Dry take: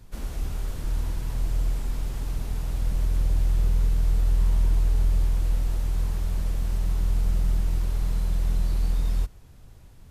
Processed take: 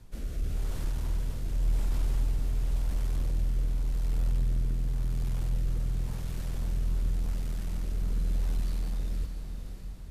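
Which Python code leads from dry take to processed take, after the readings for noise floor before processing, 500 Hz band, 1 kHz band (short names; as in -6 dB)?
-48 dBFS, -4.0 dB, -6.5 dB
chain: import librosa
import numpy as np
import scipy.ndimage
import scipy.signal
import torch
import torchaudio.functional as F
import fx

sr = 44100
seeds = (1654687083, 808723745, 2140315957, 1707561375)

y = 10.0 ** (-20.5 / 20.0) * np.tanh(x / 10.0 ** (-20.5 / 20.0))
y = fx.rotary(y, sr, hz=0.9)
y = fx.echo_diffused(y, sr, ms=566, feedback_pct=50, wet_db=-7.0)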